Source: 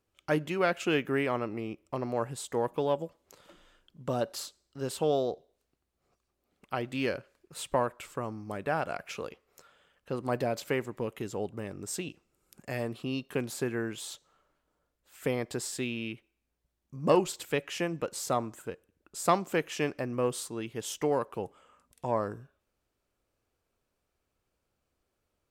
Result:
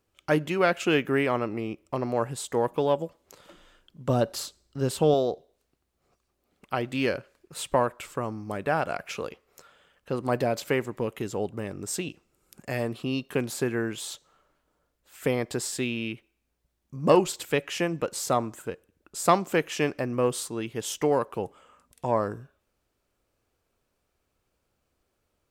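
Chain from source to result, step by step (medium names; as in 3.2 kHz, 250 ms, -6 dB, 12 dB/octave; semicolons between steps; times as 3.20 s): 4.09–5.14 s: bass shelf 220 Hz +8.5 dB; trim +4.5 dB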